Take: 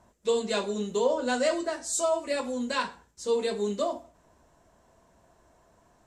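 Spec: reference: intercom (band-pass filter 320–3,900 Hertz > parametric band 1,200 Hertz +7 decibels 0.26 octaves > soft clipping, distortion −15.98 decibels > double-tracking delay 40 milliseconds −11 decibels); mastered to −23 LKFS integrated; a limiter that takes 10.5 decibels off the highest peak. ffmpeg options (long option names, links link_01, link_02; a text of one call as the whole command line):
ffmpeg -i in.wav -filter_complex "[0:a]alimiter=limit=-23dB:level=0:latency=1,highpass=320,lowpass=3900,equalizer=frequency=1200:width_type=o:width=0.26:gain=7,asoftclip=threshold=-28dB,asplit=2[link_01][link_02];[link_02]adelay=40,volume=-11dB[link_03];[link_01][link_03]amix=inputs=2:normalize=0,volume=13dB" out.wav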